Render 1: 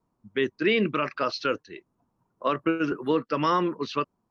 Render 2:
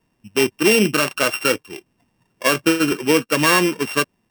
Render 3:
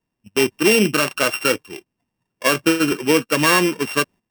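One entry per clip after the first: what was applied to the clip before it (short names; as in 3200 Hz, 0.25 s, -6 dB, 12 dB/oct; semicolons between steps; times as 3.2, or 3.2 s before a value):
sample sorter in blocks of 16 samples; gain +8 dB
gate -38 dBFS, range -12 dB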